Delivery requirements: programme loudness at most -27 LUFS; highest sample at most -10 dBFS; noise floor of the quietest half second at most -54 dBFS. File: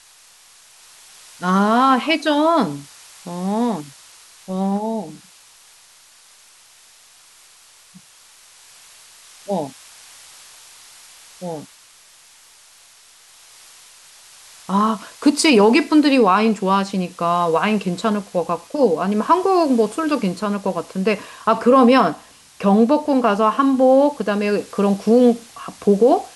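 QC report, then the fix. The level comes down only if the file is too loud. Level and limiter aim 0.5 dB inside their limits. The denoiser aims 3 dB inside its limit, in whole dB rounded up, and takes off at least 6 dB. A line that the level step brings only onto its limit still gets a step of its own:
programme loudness -17.5 LUFS: fail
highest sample -4.0 dBFS: fail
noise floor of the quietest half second -49 dBFS: fail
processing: trim -10 dB

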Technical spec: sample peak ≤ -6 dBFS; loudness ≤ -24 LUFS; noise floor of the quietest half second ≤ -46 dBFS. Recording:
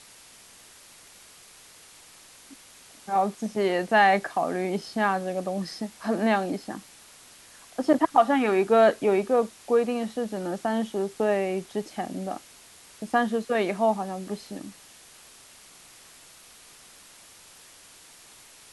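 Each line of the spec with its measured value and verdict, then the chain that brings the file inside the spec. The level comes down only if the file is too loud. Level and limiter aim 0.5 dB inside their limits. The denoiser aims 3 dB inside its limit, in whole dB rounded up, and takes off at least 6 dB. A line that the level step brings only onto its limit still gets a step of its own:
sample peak -7.0 dBFS: pass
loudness -25.5 LUFS: pass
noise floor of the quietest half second -51 dBFS: pass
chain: none needed

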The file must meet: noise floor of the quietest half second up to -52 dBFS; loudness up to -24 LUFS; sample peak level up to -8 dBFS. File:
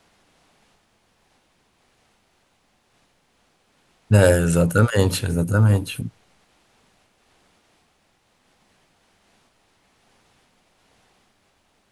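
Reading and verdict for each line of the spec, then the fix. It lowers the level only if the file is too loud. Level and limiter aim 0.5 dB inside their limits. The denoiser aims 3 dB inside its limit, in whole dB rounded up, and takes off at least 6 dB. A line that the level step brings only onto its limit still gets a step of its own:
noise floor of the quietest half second -65 dBFS: pass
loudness -19.0 LUFS: fail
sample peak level -2.0 dBFS: fail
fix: trim -5.5 dB; peak limiter -8.5 dBFS

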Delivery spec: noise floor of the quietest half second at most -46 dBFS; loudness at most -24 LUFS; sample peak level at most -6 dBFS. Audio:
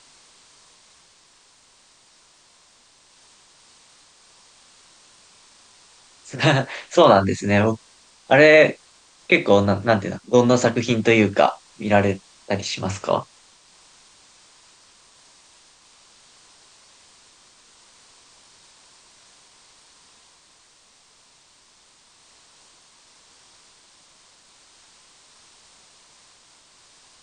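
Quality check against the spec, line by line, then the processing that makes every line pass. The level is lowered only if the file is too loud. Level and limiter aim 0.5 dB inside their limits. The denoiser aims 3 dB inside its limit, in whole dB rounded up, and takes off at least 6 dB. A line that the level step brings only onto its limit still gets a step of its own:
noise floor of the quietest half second -56 dBFS: pass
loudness -18.5 LUFS: fail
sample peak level -2.5 dBFS: fail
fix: trim -6 dB

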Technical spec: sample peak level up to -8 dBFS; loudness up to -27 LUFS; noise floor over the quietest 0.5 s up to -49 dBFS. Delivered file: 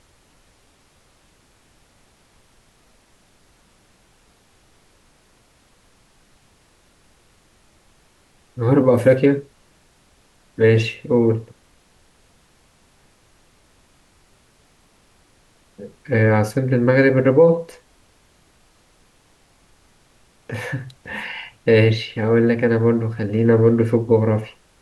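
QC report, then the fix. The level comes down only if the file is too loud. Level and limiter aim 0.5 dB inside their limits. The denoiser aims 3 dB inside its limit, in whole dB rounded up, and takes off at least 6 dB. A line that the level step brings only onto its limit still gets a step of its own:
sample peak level -3.5 dBFS: fail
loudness -18.0 LUFS: fail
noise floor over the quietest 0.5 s -57 dBFS: pass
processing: trim -9.5 dB

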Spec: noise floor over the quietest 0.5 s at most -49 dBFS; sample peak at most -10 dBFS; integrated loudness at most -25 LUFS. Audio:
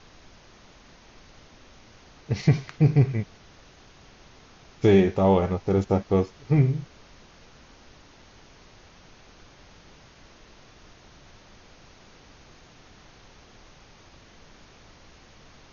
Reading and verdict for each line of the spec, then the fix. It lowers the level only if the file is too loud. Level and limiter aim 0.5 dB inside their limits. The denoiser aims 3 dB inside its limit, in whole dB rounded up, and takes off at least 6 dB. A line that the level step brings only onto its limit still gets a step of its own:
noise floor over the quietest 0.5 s -52 dBFS: pass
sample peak -7.5 dBFS: fail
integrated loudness -23.0 LUFS: fail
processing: trim -2.5 dB; peak limiter -10.5 dBFS

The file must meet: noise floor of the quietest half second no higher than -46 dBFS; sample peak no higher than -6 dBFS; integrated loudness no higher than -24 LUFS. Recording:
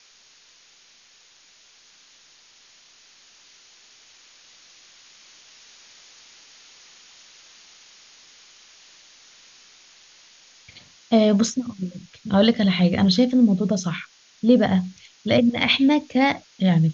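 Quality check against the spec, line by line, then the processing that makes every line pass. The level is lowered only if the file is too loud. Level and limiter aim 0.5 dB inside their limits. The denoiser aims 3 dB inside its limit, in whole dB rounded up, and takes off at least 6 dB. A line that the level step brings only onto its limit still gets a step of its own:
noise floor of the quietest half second -54 dBFS: pass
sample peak -5.0 dBFS: fail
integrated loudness -20.0 LUFS: fail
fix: trim -4.5 dB

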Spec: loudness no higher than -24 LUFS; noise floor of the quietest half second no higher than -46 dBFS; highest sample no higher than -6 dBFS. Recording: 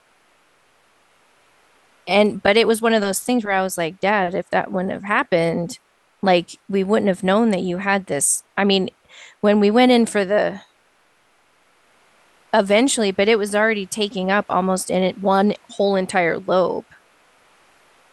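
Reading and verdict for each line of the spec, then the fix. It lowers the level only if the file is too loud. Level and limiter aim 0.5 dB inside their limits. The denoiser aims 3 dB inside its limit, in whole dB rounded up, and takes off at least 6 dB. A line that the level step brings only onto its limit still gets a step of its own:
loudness -19.0 LUFS: fail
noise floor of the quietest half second -59 dBFS: pass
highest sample -3.5 dBFS: fail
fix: trim -5.5 dB

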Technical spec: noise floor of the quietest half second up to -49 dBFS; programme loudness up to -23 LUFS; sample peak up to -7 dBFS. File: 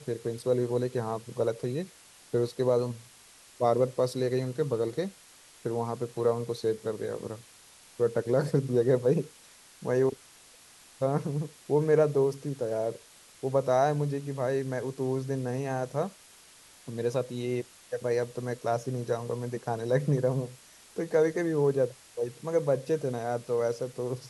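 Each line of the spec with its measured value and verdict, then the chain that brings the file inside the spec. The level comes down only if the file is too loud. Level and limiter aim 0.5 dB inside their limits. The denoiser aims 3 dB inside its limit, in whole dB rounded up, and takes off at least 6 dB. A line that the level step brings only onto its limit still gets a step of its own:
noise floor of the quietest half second -55 dBFS: pass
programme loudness -29.5 LUFS: pass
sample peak -12.0 dBFS: pass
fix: none needed

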